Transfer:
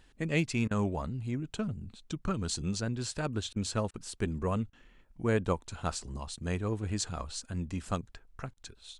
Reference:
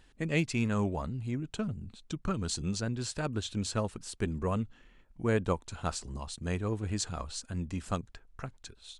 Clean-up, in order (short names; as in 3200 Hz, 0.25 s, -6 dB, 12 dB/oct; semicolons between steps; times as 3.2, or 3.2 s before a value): interpolate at 0.68/3.53/3.91/4.7/8.54, 28 ms